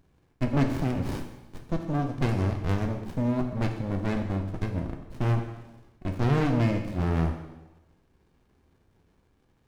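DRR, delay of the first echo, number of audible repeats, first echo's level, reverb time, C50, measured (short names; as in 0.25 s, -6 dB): 4.0 dB, none, none, none, 1.0 s, 7.0 dB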